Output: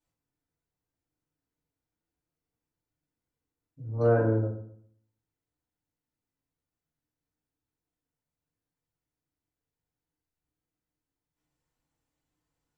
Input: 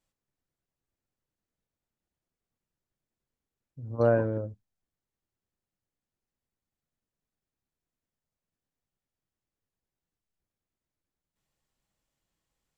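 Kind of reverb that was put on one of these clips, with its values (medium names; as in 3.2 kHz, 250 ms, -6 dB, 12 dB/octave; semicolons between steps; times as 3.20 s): FDN reverb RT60 0.64 s, low-frequency decay 1.2×, high-frequency decay 0.4×, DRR -6.5 dB; trim -8 dB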